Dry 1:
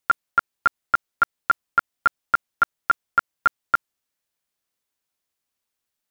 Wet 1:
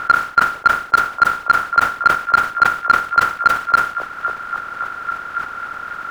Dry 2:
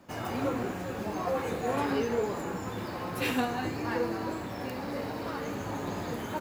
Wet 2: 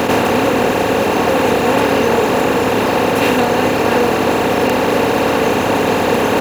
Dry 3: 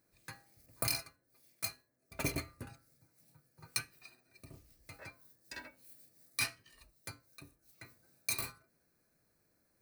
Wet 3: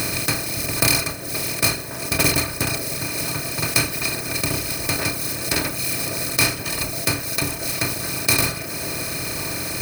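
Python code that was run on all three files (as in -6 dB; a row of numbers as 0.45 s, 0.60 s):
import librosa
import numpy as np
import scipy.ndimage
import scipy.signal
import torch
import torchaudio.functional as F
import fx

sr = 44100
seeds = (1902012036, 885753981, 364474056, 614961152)

y = fx.bin_compress(x, sr, power=0.2)
y = fx.dereverb_blind(y, sr, rt60_s=1.1)
y = fx.echo_stepped(y, sr, ms=543, hz=510.0, octaves=0.7, feedback_pct=70, wet_db=-7.0)
y = 10.0 ** (-6.5 / 20.0) * np.tanh(y / 10.0 ** (-6.5 / 20.0))
y = fx.sustainer(y, sr, db_per_s=130.0)
y = librosa.util.normalize(y) * 10.0 ** (-1.5 / 20.0)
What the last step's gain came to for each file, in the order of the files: +6.0 dB, +11.0 dB, +12.0 dB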